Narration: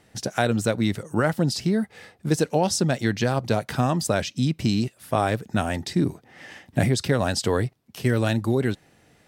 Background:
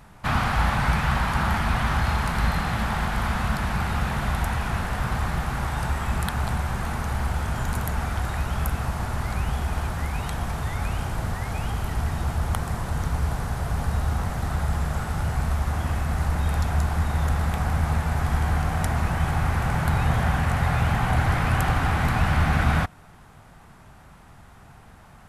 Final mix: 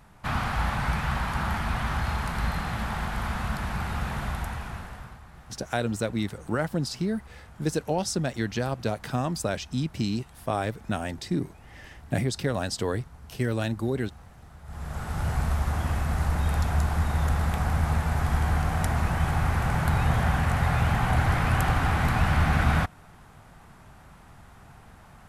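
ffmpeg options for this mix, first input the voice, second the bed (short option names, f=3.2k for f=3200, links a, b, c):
-filter_complex "[0:a]adelay=5350,volume=-5.5dB[a];[1:a]volume=16dB,afade=t=out:st=4.2:d=1:silence=0.133352,afade=t=in:st=14.63:d=0.67:silence=0.0891251[b];[a][b]amix=inputs=2:normalize=0"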